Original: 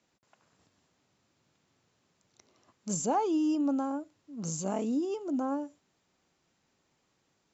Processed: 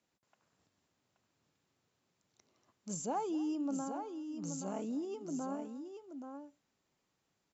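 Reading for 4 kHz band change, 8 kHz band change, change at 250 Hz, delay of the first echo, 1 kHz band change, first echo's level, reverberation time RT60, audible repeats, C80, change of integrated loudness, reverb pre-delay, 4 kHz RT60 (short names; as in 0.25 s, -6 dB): -7.0 dB, n/a, -7.5 dB, 0.245 s, -7.0 dB, -19.0 dB, none, 2, none, -8.5 dB, none, none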